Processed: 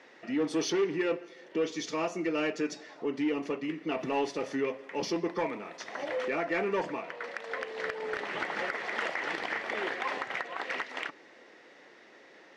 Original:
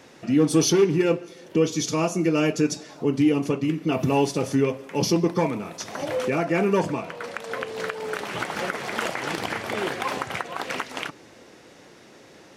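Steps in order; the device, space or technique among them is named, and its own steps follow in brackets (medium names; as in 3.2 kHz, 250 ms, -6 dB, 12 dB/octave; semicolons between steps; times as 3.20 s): intercom (band-pass 330–4200 Hz; peaking EQ 1.9 kHz +8.5 dB 0.29 oct; saturation -15 dBFS, distortion -18 dB); 7.85–8.63 s: bass shelf 340 Hz +6 dB; trim -5.5 dB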